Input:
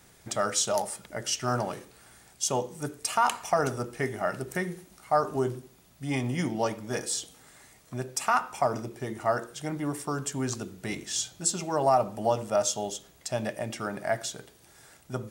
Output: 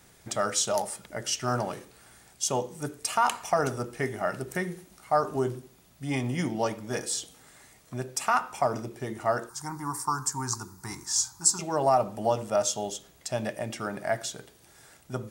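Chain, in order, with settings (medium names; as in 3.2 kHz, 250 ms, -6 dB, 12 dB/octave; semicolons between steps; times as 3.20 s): 9.49–11.59 s: FFT filter 110 Hz 0 dB, 220 Hz -8 dB, 360 Hz -6 dB, 580 Hz -22 dB, 920 Hz +13 dB, 3.1 kHz -17 dB, 4.8 kHz +5 dB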